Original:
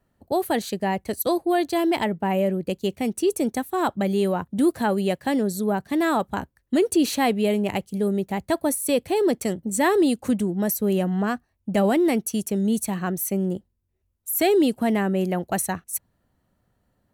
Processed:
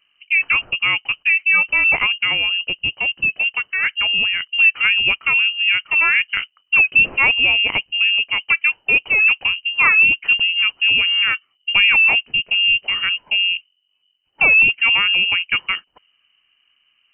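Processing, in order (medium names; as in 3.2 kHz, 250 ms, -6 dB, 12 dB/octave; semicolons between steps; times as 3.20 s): 2.25–4.48 s: peaking EQ 530 Hz -9 dB 0.86 oct; frequency inversion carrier 3 kHz; trim +6 dB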